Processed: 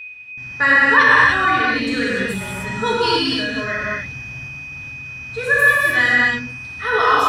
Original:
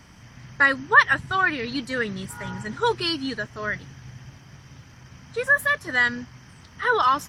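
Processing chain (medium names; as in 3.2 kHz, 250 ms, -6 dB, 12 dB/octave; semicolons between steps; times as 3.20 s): gate with hold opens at -36 dBFS; whistle 2.5 kHz -33 dBFS; gated-style reverb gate 330 ms flat, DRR -7 dB; trim -1 dB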